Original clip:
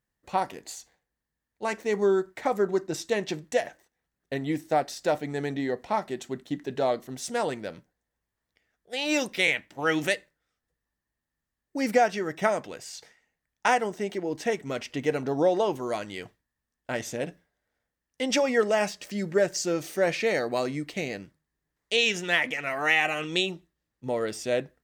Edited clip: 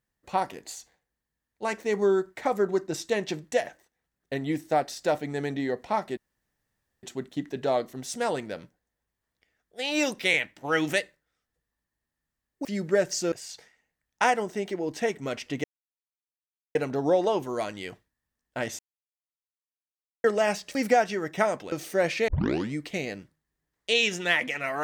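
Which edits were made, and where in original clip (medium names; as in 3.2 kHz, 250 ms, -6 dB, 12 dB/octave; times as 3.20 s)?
6.17 s: insert room tone 0.86 s
11.79–12.76 s: swap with 19.08–19.75 s
15.08 s: insert silence 1.11 s
17.12–18.57 s: mute
20.31 s: tape start 0.45 s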